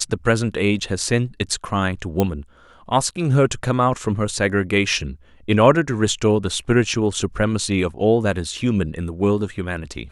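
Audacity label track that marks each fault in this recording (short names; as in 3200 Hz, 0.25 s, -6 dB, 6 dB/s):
2.200000	2.200000	pop -6 dBFS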